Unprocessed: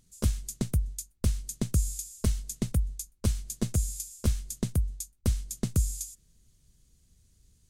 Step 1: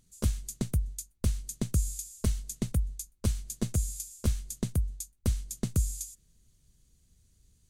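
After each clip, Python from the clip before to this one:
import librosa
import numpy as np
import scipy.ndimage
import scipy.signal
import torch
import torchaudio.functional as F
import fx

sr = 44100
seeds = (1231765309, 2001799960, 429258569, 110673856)

y = fx.notch(x, sr, hz=5200.0, q=25.0)
y = F.gain(torch.from_numpy(y), -1.5).numpy()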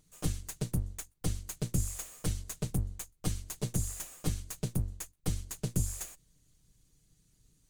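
y = fx.lower_of_two(x, sr, delay_ms=6.5)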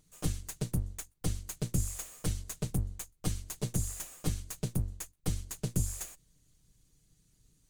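y = x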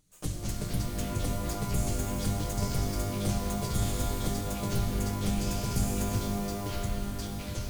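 y = fx.echo_pitch(x, sr, ms=111, semitones=-6, count=3, db_per_echo=-3.0)
y = fx.rev_shimmer(y, sr, seeds[0], rt60_s=3.0, semitones=12, shimmer_db=-2, drr_db=3.5)
y = F.gain(torch.from_numpy(y), -2.0).numpy()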